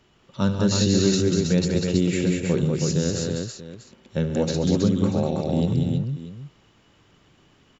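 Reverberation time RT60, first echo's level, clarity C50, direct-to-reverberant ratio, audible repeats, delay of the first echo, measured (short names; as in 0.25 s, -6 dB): none, -13.5 dB, none, none, 5, 73 ms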